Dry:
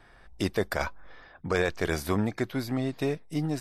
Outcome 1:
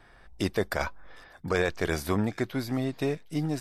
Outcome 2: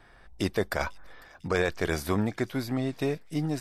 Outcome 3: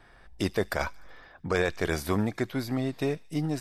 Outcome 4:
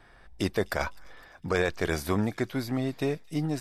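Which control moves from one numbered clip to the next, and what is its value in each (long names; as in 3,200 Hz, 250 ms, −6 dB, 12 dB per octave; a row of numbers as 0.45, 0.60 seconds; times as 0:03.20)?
delay with a high-pass on its return, delay time: 761, 499, 74, 255 milliseconds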